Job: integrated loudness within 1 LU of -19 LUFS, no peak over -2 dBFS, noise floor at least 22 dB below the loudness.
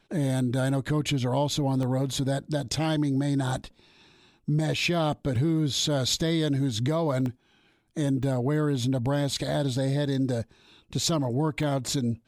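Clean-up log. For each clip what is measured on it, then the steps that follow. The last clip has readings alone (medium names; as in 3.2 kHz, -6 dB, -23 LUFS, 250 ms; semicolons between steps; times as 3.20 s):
dropouts 5; longest dropout 1.2 ms; loudness -27.0 LUFS; peak level -13.5 dBFS; loudness target -19.0 LUFS
-> interpolate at 1.83/5.36/7.26/8.23/11.63 s, 1.2 ms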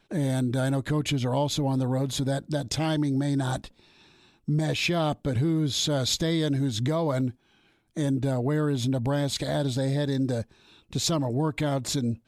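dropouts 0; loudness -27.0 LUFS; peak level -13.5 dBFS; loudness target -19.0 LUFS
-> trim +8 dB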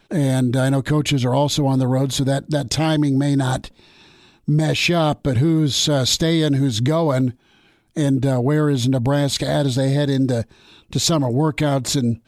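loudness -19.0 LUFS; peak level -5.5 dBFS; noise floor -57 dBFS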